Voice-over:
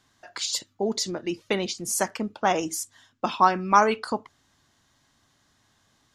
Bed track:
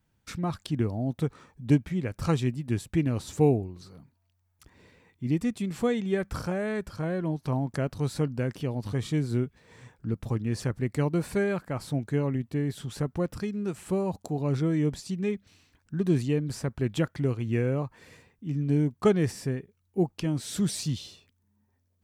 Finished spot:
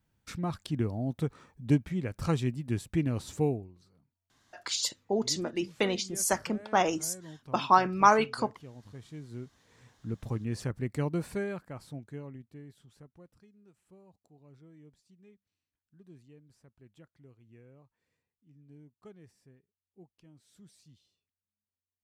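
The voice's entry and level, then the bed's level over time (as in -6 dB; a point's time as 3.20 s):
4.30 s, -2.5 dB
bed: 3.30 s -3 dB
3.93 s -17.5 dB
9.14 s -17.5 dB
10.20 s -4.5 dB
11.16 s -4.5 dB
13.56 s -29.5 dB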